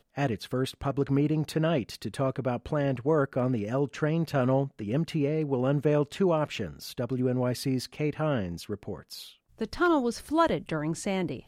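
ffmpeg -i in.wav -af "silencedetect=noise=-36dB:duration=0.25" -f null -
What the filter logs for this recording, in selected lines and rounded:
silence_start: 9.27
silence_end: 9.61 | silence_duration: 0.34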